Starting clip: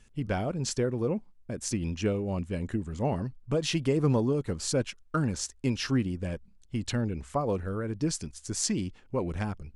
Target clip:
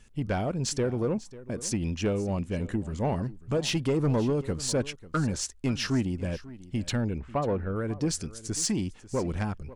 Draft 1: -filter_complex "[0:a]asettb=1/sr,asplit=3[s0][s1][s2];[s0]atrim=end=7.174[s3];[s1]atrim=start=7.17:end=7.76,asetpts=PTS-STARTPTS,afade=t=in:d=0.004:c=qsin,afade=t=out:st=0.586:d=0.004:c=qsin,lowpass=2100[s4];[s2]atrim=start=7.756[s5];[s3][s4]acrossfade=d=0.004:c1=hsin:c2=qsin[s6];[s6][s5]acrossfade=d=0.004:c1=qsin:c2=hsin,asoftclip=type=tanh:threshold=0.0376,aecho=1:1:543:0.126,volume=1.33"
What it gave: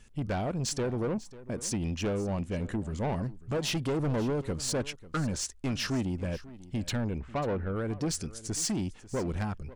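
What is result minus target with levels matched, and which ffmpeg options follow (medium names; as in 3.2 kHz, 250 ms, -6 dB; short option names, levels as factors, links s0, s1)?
saturation: distortion +7 dB
-filter_complex "[0:a]asettb=1/sr,asplit=3[s0][s1][s2];[s0]atrim=end=7.174[s3];[s1]atrim=start=7.17:end=7.76,asetpts=PTS-STARTPTS,afade=t=in:d=0.004:c=qsin,afade=t=out:st=0.586:d=0.004:c=qsin,lowpass=2100[s4];[s2]atrim=start=7.756[s5];[s3][s4]acrossfade=d=0.004:c1=hsin:c2=qsin[s6];[s6][s5]acrossfade=d=0.004:c1=qsin:c2=hsin,asoftclip=type=tanh:threshold=0.0841,aecho=1:1:543:0.126,volume=1.33"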